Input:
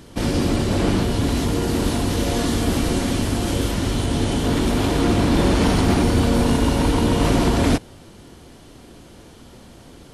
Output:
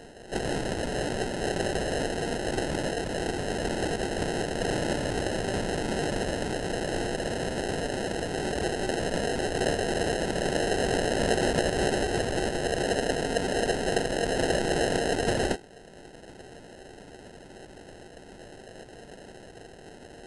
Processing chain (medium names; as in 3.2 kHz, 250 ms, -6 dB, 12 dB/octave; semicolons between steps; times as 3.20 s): FFT band-pass 700–7400 Hz; in parallel at +0.5 dB: compression 6:1, threshold -41 dBFS, peak gain reduction 17.5 dB; on the sum: sample-and-hold 19×; speed mistake 15 ips tape played at 7.5 ips